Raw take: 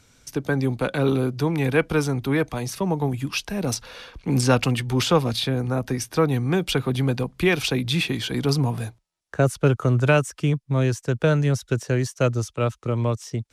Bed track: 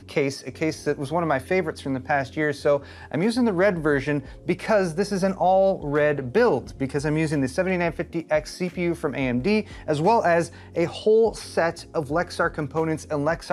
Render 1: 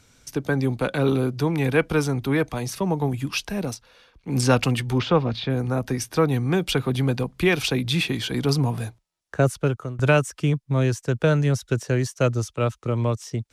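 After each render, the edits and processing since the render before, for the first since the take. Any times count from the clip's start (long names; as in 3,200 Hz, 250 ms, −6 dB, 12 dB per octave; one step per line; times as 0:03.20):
0:03.59–0:04.42: duck −13 dB, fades 0.19 s
0:04.98–0:05.50: high-frequency loss of the air 240 metres
0:09.46–0:09.99: fade out, to −20 dB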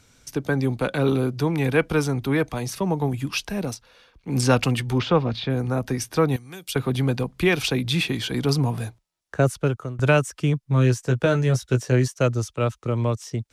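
0:06.36–0:06.76: first-order pre-emphasis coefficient 0.9
0:10.61–0:12.08: double-tracking delay 16 ms −5.5 dB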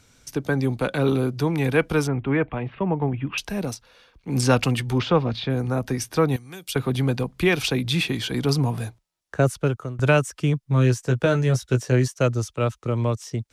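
0:02.07–0:03.38: Butterworth low-pass 3,000 Hz 48 dB per octave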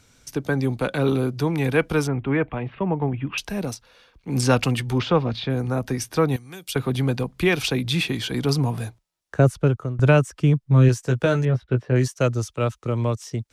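0:09.39–0:10.89: spectral tilt −1.5 dB per octave
0:11.45–0:11.96: high-frequency loss of the air 430 metres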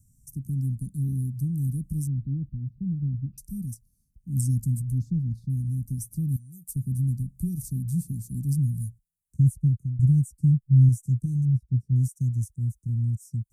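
inverse Chebyshev band-stop filter 570–3,300 Hz, stop band 60 dB
parametric band 380 Hz −5 dB 1.1 octaves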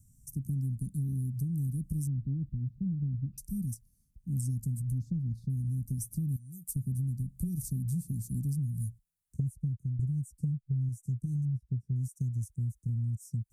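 downward compressor 10 to 1, threshold −29 dBFS, peak gain reduction 16 dB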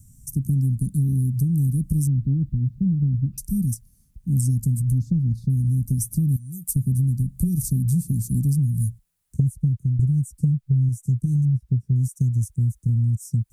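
level +11.5 dB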